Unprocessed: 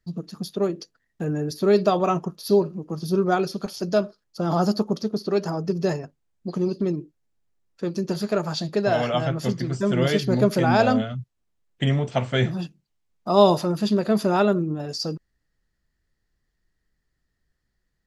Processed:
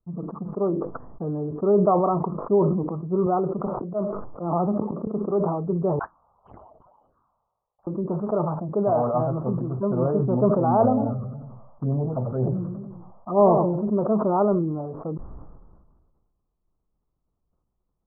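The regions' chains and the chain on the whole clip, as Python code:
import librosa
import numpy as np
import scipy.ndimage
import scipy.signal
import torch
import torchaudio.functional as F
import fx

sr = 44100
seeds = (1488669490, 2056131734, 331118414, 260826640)

y = fx.chain(x, sr, fx.lowpass(hz=2100.0, slope=6),
    fx.auto_swell(attack_ms=167.0),
    fx.band_squash(depth_pct=70), at=(3.26, 5.07))
y = fx.chain(y, sr, fx.tilt_shelf(db=3.5, hz=1300.0),
    fx.freq_invert(carrier_hz=3300),
    fx.env_phaser(low_hz=270.0, high_hz=1800.0, full_db=-22.0), at=(5.99, 7.87))
y = fx.chain(y, sr, fx.cvsd(bps=64000),
    fx.env_phaser(low_hz=370.0, high_hz=1800.0, full_db=-15.5),
    fx.echo_warbled(ms=94, feedback_pct=33, rate_hz=2.8, cents=180, wet_db=-10), at=(10.83, 13.9))
y = scipy.signal.sosfilt(scipy.signal.butter(12, 1200.0, 'lowpass', fs=sr, output='sos'), y)
y = fx.tilt_shelf(y, sr, db=-3.5, hz=680.0)
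y = fx.sustainer(y, sr, db_per_s=36.0)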